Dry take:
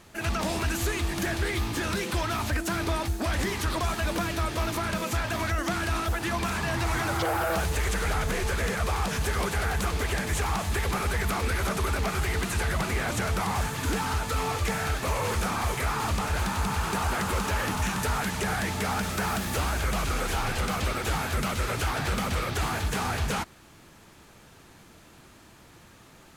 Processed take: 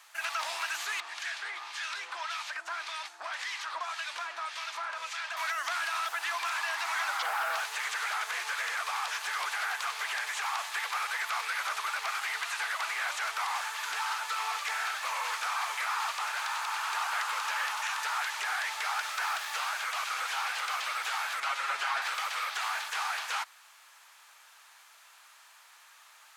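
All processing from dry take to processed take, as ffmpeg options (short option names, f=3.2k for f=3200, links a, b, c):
-filter_complex "[0:a]asettb=1/sr,asplit=3[a][b][c];[a]atrim=end=1.004[d];[b]atrim=start=1:end=5.37,asetpts=PTS-STARTPTS,afade=t=in:d=0.004:c=qsin,afade=t=out:st=4.366:d=0.004:c=qsin,lowpass=5.9k,acrossover=split=1600[e][f];[e]aeval=exprs='val(0)*(1-0.7/2+0.7/2*cos(2*PI*1.8*n/s))':c=same[g];[f]aeval=exprs='val(0)*(1-0.7/2-0.7/2*cos(2*PI*1.8*n/s))':c=same[h];[g][h]amix=inputs=2:normalize=0[i];[c]atrim=start=5.366[j];[d][i]acrossfade=d=0.004:c1=hsin:c2=qsin[k];[k][j]acrossfade=d=0.004:c1=qsin:c2=hsin,asettb=1/sr,asplit=3[l][m][n];[l]atrim=end=21.404[o];[m]atrim=start=21.4:end=22.02,asetpts=PTS-STARTPTS,afade=t=in:d=0.004:c=qsin,afade=t=out:st=0.616:d=0.004:c=qsin,aemphasis=mode=reproduction:type=bsi,aecho=1:1:7.3:0.89,atrim=end_sample=27342[p];[n]atrim=start=22.016[q];[o][p]acrossfade=d=0.004:c1=hsin:c2=qsin[r];[r][q]acrossfade=d=0.004:c1=qsin:c2=hsin,acrossover=split=6200[s][t];[t]acompressor=threshold=-48dB:ratio=4:attack=1:release=60[u];[s][u]amix=inputs=2:normalize=0,highpass=f=910:w=0.5412,highpass=f=910:w=1.3066"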